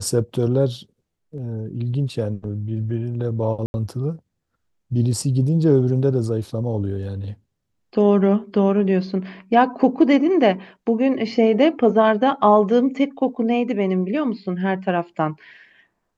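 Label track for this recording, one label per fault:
3.660000	3.740000	drop-out 81 ms

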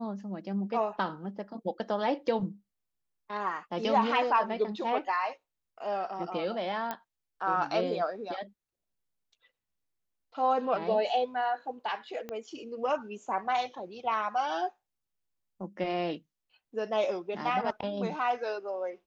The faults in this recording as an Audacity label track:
6.910000	6.910000	click −19 dBFS
12.290000	12.290000	click −24 dBFS

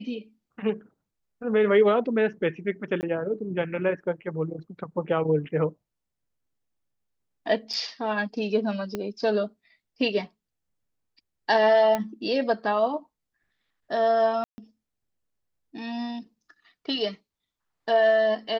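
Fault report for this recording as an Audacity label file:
3.010000	3.030000	drop-out 19 ms
7.730000	7.740000	drop-out 5.8 ms
8.950000	8.950000	click −16 dBFS
11.950000	11.950000	click −12 dBFS
14.440000	14.580000	drop-out 140 ms

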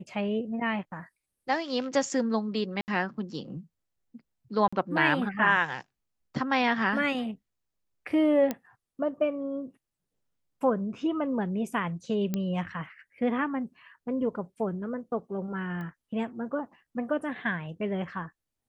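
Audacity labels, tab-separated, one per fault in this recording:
2.810000	2.880000	drop-out 69 ms
4.680000	4.720000	drop-out 45 ms
8.510000	8.510000	click −15 dBFS
12.340000	12.340000	click −16 dBFS
15.810000	15.810000	click −29 dBFS

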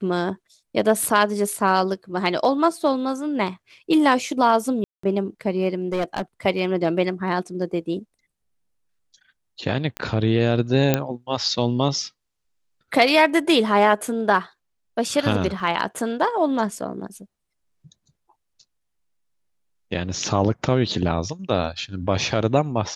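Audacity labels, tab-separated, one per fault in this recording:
4.840000	5.030000	drop-out 194 ms
5.920000	6.220000	clipping −19 dBFS
9.970000	9.970000	click −13 dBFS
10.940000	10.940000	click −4 dBFS
15.600000	15.600000	drop-out 3.2 ms

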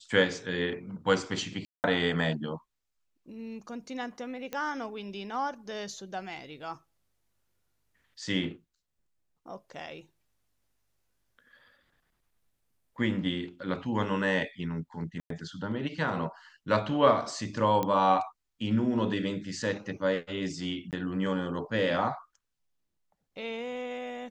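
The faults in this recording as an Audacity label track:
1.650000	1.840000	drop-out 189 ms
4.530000	4.530000	click −20 dBFS
15.200000	15.300000	drop-out 103 ms
17.830000	17.830000	click −16 dBFS
20.910000	20.930000	drop-out 18 ms

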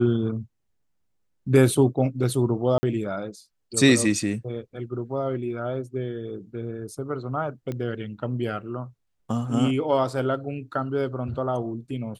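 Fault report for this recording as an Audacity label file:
2.780000	2.830000	drop-out 50 ms
7.720000	7.720000	click −20 dBFS

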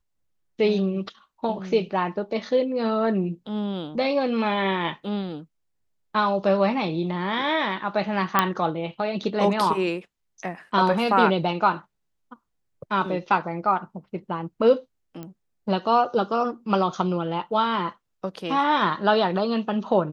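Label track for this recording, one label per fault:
8.390000	8.390000	click −4 dBFS
15.230000	15.230000	click −23 dBFS

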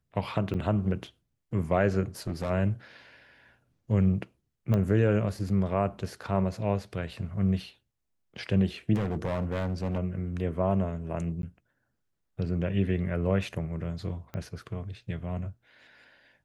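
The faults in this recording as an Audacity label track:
0.540000	0.550000	drop-out 5.2 ms
2.270000	2.510000	clipping −26 dBFS
4.740000	4.740000	click −17 dBFS
8.940000	9.990000	clipping −25.5 dBFS
11.420000	11.430000	drop-out 12 ms
14.340000	14.340000	click −24 dBFS

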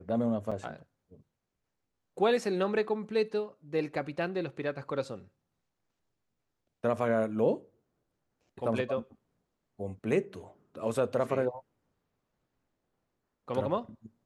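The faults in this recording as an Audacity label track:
0.510000	0.520000	drop-out 5.5 ms

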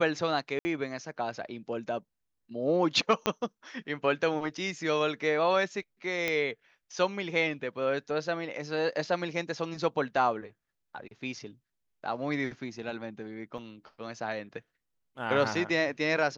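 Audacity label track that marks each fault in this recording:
0.590000	0.650000	drop-out 60 ms
3.260000	3.260000	click −11 dBFS
6.280000	6.280000	click −15 dBFS
13.580000	13.580000	drop-out 2 ms

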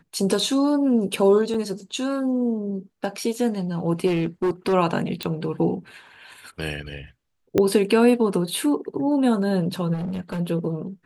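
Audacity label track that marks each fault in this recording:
1.540000	1.540000	drop-out 4.2 ms
4.060000	4.740000	clipping −18 dBFS
5.230000	5.230000	click −12 dBFS
7.580000	7.580000	click −8 dBFS
9.930000	10.400000	clipping −25 dBFS

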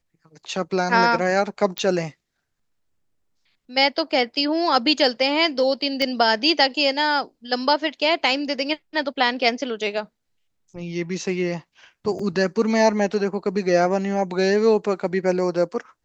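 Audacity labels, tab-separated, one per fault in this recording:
1.780000	1.780000	click −11 dBFS
6.020000	6.020000	click −10 dBFS
12.190000	12.190000	drop-out 4.4 ms

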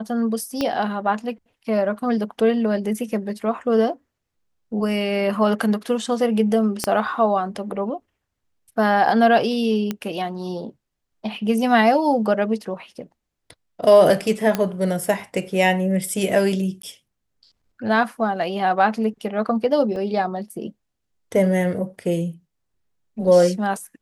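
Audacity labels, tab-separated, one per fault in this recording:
0.610000	0.610000	click −10 dBFS
6.840000	6.840000	click −6 dBFS
9.910000	9.910000	click −11 dBFS
14.550000	14.550000	click −7 dBFS
16.820000	16.830000	drop-out 13 ms
19.960000	19.960000	drop-out 2.1 ms

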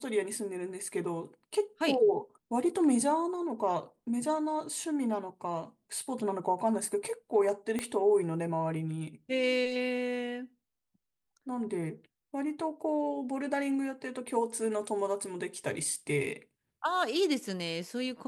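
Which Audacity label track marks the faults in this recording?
7.790000	7.790000	click −19 dBFS

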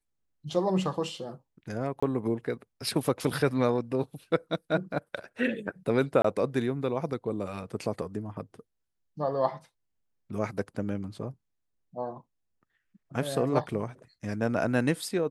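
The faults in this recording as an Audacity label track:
2.000000	2.020000	drop-out 25 ms
6.220000	6.240000	drop-out 24 ms

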